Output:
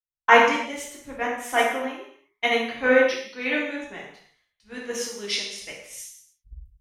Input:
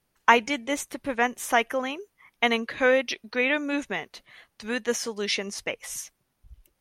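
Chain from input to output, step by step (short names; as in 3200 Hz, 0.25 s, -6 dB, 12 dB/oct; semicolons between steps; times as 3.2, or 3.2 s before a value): non-linear reverb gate 0.37 s falling, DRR -4 dB; three-band expander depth 100%; gain -6.5 dB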